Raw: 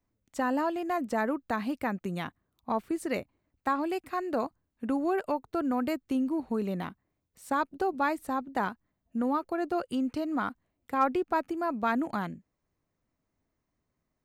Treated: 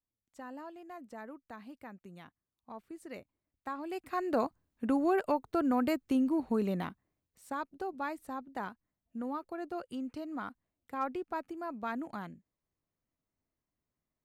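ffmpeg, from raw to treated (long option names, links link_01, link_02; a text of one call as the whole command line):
ffmpeg -i in.wav -af "afade=type=in:start_time=2.71:duration=1.12:silence=0.473151,afade=type=in:start_time=3.83:duration=0.47:silence=0.298538,afade=type=out:start_time=6.64:duration=0.89:silence=0.354813" out.wav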